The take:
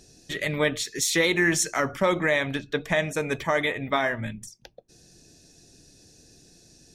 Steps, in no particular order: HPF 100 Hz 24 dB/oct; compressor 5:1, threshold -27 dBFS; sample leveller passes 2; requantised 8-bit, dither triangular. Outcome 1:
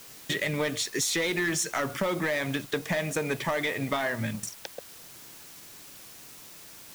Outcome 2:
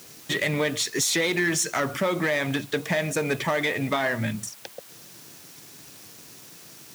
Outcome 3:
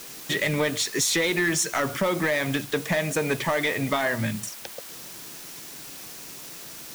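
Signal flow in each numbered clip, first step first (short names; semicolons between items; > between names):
HPF > sample leveller > compressor > requantised; compressor > sample leveller > requantised > HPF; compressor > requantised > HPF > sample leveller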